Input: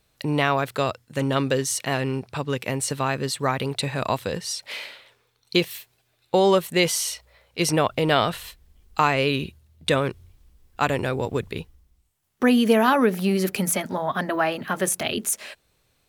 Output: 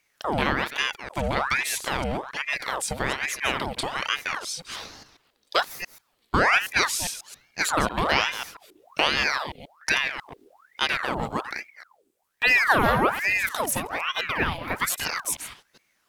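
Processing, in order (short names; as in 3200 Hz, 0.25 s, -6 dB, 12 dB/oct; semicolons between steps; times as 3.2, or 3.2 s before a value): reverse delay 0.136 s, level -10.5 dB; ring modulator with a swept carrier 1300 Hz, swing 75%, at 1.2 Hz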